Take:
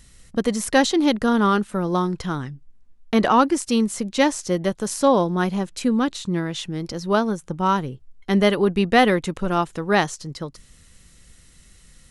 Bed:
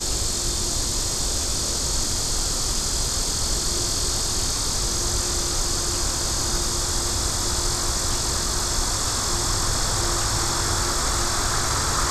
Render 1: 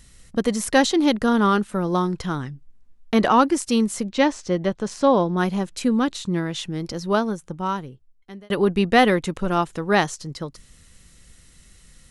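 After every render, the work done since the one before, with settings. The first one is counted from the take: 4.07–5.37 air absorption 100 m; 6.99–8.5 fade out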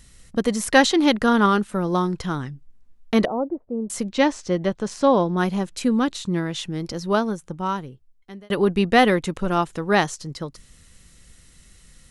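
0.68–1.46 bell 1800 Hz +4.5 dB 2.5 oct; 3.25–3.9 ladder low-pass 720 Hz, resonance 50%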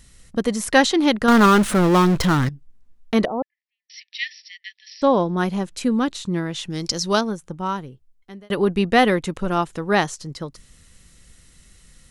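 1.28–2.49 power-law curve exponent 0.5; 3.42–5.02 brick-wall FIR band-pass 1700–5800 Hz; 6.7–7.21 bell 6000 Hz +14.5 dB 1.9 oct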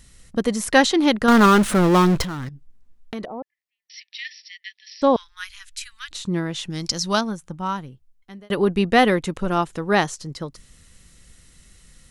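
2.23–4.25 compressor 3:1, threshold -31 dBFS; 5.16–6.11 inverse Chebyshev band-stop 170–650 Hz, stop band 60 dB; 6.7–8.39 bell 420 Hz -6.5 dB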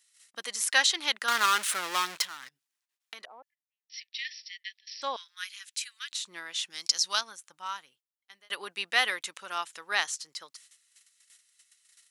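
gate -47 dBFS, range -12 dB; Bessel high-pass 2200 Hz, order 2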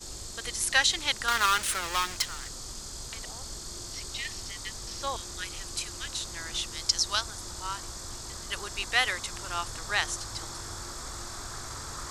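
add bed -16.5 dB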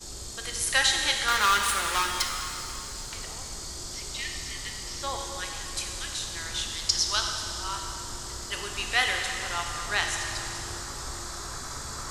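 plate-style reverb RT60 3 s, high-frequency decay 0.95×, DRR 1.5 dB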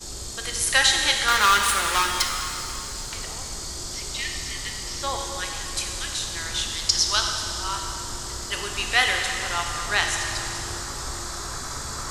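gain +4.5 dB; limiter -3 dBFS, peak gain reduction 1 dB

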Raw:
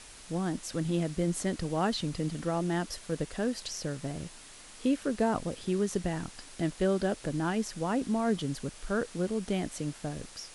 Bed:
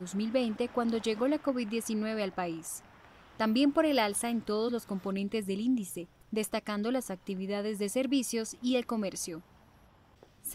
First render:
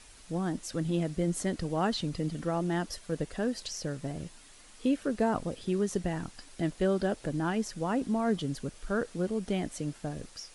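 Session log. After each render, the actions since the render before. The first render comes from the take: denoiser 6 dB, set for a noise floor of -50 dBFS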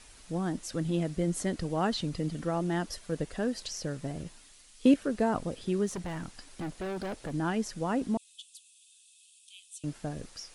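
4.23–4.94 three-band expander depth 70%; 5.87–7.32 hard clip -33 dBFS; 8.17–9.84 rippled Chebyshev high-pass 2500 Hz, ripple 9 dB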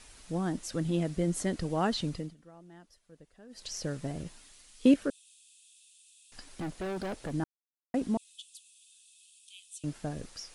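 2.09–3.75 dip -22.5 dB, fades 0.26 s; 5.1–6.32 room tone; 7.44–7.94 mute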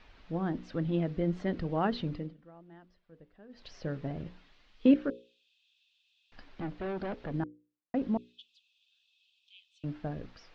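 Bessel low-pass 2600 Hz, order 6; notches 60/120/180/240/300/360/420/480/540 Hz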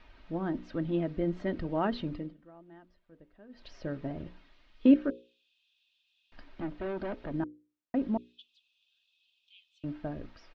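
LPF 3900 Hz 6 dB/oct; comb 3.2 ms, depth 35%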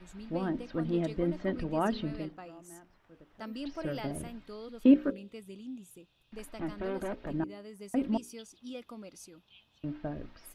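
add bed -13.5 dB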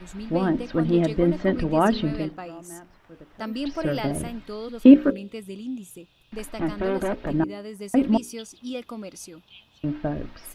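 gain +10 dB; limiter -2 dBFS, peak gain reduction 1 dB

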